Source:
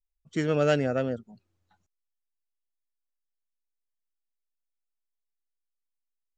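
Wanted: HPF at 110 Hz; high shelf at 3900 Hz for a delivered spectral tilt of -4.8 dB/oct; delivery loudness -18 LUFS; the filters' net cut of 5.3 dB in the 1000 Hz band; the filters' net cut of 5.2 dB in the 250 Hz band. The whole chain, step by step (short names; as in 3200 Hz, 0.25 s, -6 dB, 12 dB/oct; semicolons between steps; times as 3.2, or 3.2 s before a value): HPF 110 Hz; bell 250 Hz -6 dB; bell 1000 Hz -9 dB; high shelf 3900 Hz +6 dB; gain +12.5 dB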